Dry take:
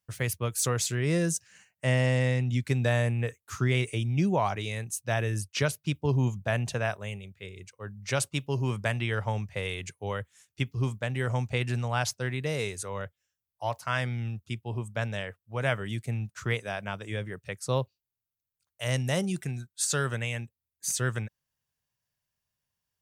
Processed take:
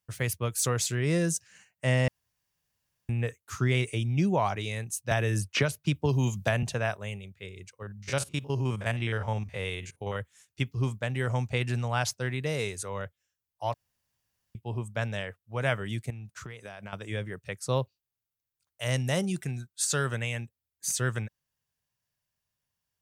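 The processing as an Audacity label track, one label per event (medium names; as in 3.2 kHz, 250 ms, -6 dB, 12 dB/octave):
2.080000	3.090000	room tone
5.110000	6.630000	three bands compressed up and down depth 100%
7.820000	10.160000	spectrogram pixelated in time every 50 ms
13.740000	14.550000	room tone
16.100000	16.930000	compression 20:1, threshold -37 dBFS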